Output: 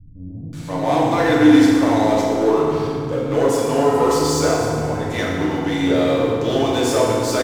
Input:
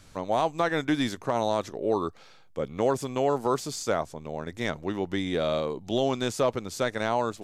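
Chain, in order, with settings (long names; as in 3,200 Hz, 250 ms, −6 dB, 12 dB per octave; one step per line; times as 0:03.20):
power curve on the samples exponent 0.7
multiband delay without the direct sound lows, highs 530 ms, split 200 Hz
feedback delay network reverb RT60 2.4 s, low-frequency decay 1.35×, high-frequency decay 0.65×, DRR −6.5 dB
level −1 dB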